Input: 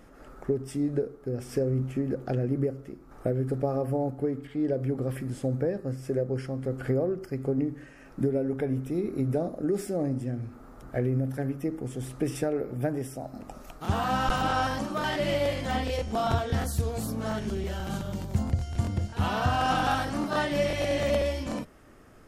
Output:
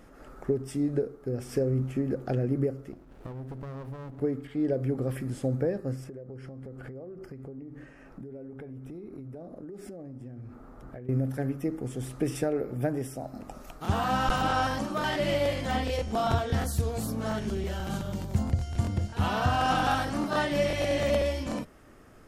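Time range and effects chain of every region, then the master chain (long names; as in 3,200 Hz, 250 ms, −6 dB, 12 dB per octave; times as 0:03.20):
0:02.92–0:04.21: downward compressor 3 to 1, threshold −38 dBFS + windowed peak hold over 33 samples
0:06.04–0:11.09: high-shelf EQ 2,800 Hz −9 dB + downward compressor 16 to 1, threshold −38 dBFS
whole clip: no processing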